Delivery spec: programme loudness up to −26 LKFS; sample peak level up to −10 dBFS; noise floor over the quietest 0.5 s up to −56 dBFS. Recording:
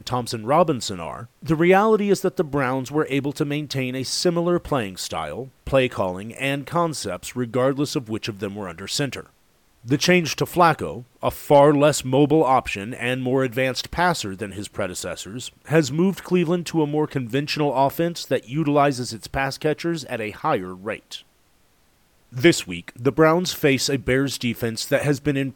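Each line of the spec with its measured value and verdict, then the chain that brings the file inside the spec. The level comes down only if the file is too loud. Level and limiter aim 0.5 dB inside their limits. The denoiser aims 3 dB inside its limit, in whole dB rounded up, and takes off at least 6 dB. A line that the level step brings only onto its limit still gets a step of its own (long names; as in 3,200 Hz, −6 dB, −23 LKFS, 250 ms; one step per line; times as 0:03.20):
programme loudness −22.0 LKFS: out of spec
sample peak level −3.5 dBFS: out of spec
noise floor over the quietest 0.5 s −60 dBFS: in spec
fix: level −4.5 dB
brickwall limiter −10.5 dBFS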